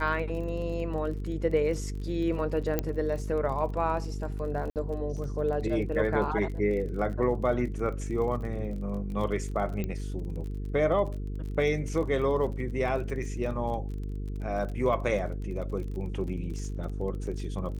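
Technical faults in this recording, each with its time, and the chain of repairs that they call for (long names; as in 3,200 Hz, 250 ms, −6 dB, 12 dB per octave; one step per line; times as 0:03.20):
mains buzz 50 Hz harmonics 9 −34 dBFS
surface crackle 32 per second −37 dBFS
0:02.79: click −13 dBFS
0:04.70–0:04.76: drop-out 58 ms
0:09.84: click −20 dBFS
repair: click removal
hum removal 50 Hz, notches 9
repair the gap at 0:04.70, 58 ms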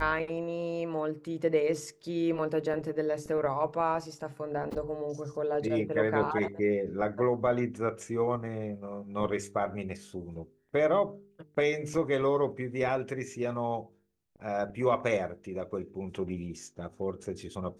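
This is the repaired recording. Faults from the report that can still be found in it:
none of them is left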